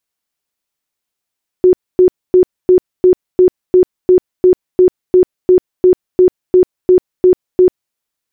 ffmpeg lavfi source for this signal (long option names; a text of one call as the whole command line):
ffmpeg -f lavfi -i "aevalsrc='0.668*sin(2*PI*366*mod(t,0.35))*lt(mod(t,0.35),33/366)':duration=6.3:sample_rate=44100" out.wav